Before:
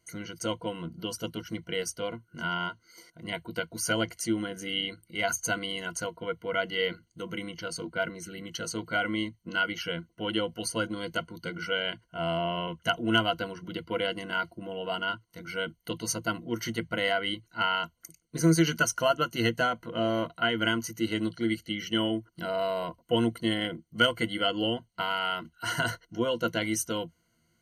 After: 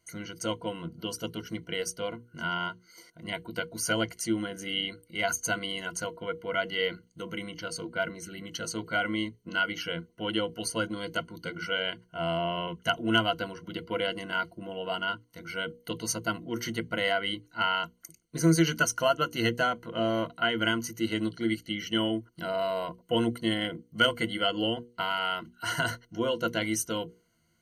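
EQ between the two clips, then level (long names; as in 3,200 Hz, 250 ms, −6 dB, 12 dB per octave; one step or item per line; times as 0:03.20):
mains-hum notches 60/120/180/240/300/360/420/480 Hz
0.0 dB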